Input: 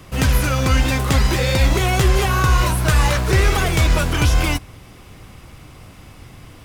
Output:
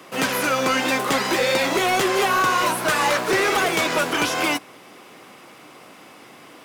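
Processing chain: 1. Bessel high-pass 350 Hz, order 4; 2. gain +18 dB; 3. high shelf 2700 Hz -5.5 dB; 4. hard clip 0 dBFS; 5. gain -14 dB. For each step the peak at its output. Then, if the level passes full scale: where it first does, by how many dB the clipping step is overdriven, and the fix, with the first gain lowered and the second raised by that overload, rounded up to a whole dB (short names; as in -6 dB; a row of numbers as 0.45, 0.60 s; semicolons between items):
-6.5, +11.5, +9.5, 0.0, -14.0 dBFS; step 2, 9.5 dB; step 2 +8 dB, step 5 -4 dB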